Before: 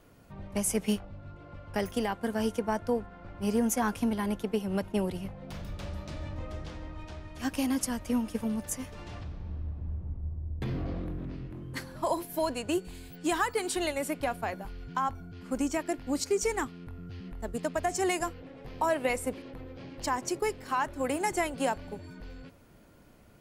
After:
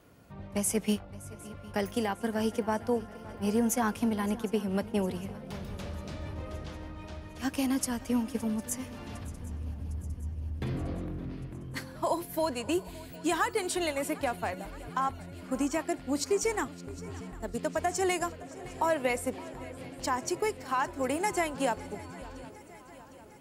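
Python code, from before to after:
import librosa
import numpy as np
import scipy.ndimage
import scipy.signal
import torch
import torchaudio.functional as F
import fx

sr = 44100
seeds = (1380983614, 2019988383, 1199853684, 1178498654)

p1 = scipy.signal.sosfilt(scipy.signal.butter(2, 49.0, 'highpass', fs=sr, output='sos'), x)
y = p1 + fx.echo_swing(p1, sr, ms=756, ratio=3, feedback_pct=59, wet_db=-19.5, dry=0)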